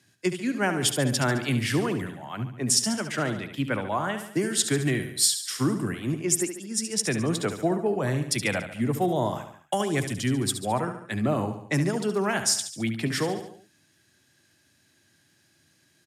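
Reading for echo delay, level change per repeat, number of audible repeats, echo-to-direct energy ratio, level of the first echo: 71 ms, −5.5 dB, 4, −8.0 dB, −9.5 dB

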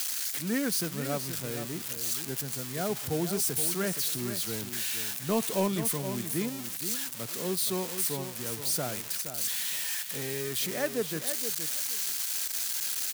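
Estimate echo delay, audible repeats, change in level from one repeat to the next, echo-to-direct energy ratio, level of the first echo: 471 ms, 2, −16.0 dB, −9.5 dB, −9.5 dB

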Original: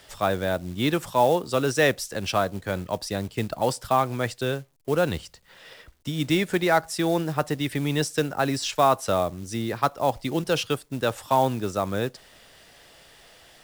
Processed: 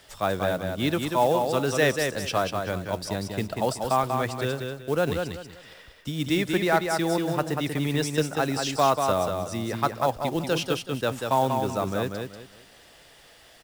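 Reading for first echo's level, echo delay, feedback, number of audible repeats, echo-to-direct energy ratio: −5.0 dB, 189 ms, 28%, 3, −4.5 dB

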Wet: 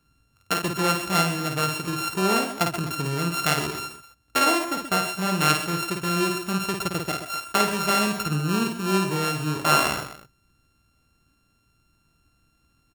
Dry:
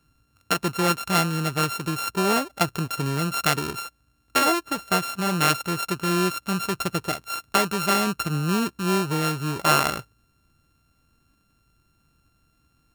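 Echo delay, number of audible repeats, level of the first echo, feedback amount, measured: 53 ms, 3, −5.0 dB, repeats not evenly spaced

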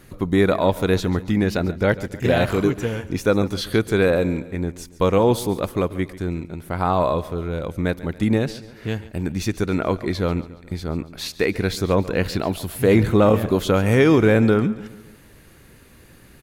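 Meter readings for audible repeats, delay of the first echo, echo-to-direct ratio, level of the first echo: 3, 140 ms, −16.0 dB, −17.0 dB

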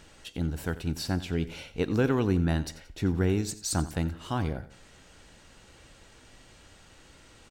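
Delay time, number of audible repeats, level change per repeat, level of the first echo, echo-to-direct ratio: 89 ms, 2, −7.5 dB, −16.0 dB, −15.5 dB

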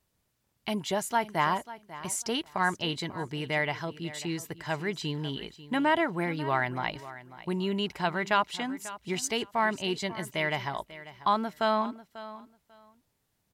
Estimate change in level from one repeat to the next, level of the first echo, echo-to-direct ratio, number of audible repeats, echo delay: −15.0 dB, −16.0 dB, −16.0 dB, 2, 543 ms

